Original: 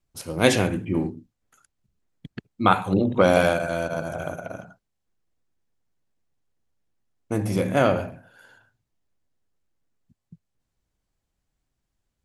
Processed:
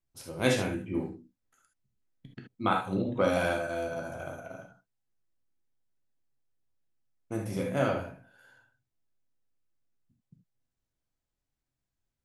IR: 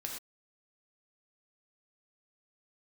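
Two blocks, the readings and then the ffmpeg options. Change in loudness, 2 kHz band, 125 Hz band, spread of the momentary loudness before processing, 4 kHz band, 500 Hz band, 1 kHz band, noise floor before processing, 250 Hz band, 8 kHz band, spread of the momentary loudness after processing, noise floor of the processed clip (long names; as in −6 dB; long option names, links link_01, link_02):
−8.0 dB, −7.0 dB, −8.5 dB, 19 LU, −8.0 dB, −8.0 dB, −8.5 dB, −80 dBFS, −8.0 dB, −8.5 dB, 18 LU, below −85 dBFS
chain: -filter_complex "[1:a]atrim=start_sample=2205,afade=type=out:start_time=0.13:duration=0.01,atrim=end_sample=6174[link_01];[0:a][link_01]afir=irnorm=-1:irlink=0,volume=-7dB"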